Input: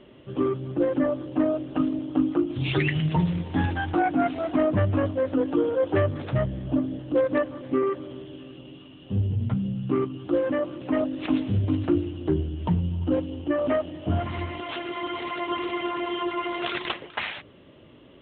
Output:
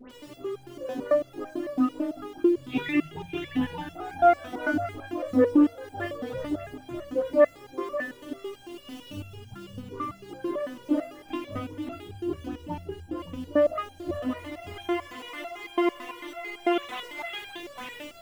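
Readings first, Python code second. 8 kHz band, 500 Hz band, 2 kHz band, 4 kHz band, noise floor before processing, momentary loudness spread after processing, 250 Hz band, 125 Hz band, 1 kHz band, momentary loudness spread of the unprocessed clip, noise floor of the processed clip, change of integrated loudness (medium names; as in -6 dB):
no reading, -1.5 dB, -2.0 dB, -4.5 dB, -50 dBFS, 17 LU, -3.0 dB, -16.0 dB, -0.5 dB, 8 LU, -50 dBFS, -3.0 dB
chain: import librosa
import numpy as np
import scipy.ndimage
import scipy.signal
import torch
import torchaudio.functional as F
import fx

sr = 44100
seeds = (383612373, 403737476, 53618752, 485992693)

p1 = x + 0.5 * 10.0 ** (-37.5 / 20.0) * np.sign(x)
p2 = fx.level_steps(p1, sr, step_db=22)
p3 = p1 + (p2 * 10.0 ** (-3.0 / 20.0))
p4 = fx.dispersion(p3, sr, late='highs', ms=99.0, hz=1700.0)
p5 = p4 + fx.echo_single(p4, sr, ms=574, db=-3.5, dry=0)
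p6 = fx.resonator_held(p5, sr, hz=9.0, low_hz=250.0, high_hz=800.0)
y = p6 * 10.0 ** (7.0 / 20.0)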